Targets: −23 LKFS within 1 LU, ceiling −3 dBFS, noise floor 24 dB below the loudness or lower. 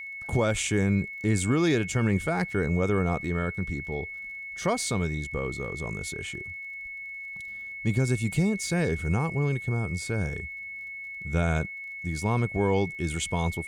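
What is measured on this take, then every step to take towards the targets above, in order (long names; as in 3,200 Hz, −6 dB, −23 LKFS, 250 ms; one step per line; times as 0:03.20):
crackle rate 26 per second; interfering tone 2,200 Hz; level of the tone −36 dBFS; integrated loudness −28.5 LKFS; sample peak −13.0 dBFS; target loudness −23.0 LKFS
→ click removal
notch filter 2,200 Hz, Q 30
level +5.5 dB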